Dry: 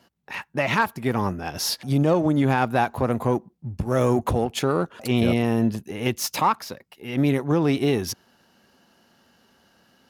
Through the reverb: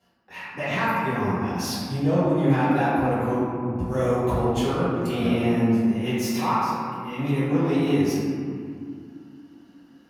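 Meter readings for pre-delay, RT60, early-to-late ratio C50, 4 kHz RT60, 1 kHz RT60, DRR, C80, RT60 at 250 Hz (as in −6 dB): 3 ms, 2.3 s, −3.0 dB, 1.2 s, 2.2 s, −13.0 dB, −1.0 dB, 3.8 s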